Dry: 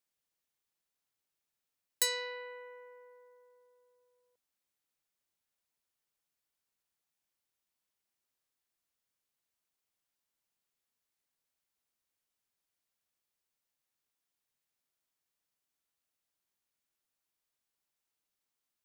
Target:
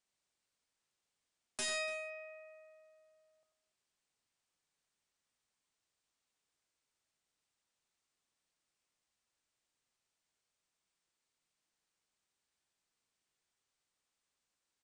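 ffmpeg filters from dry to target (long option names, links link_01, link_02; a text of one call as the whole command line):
ffmpeg -i in.wav -af "aresample=16000,aeval=exprs='0.0168*(abs(mod(val(0)/0.0168+3,4)-2)-1)':channel_layout=same,aresample=44100,asetrate=56007,aresample=44100,aecho=1:1:92|289:0.422|0.112,volume=3.5dB" out.wav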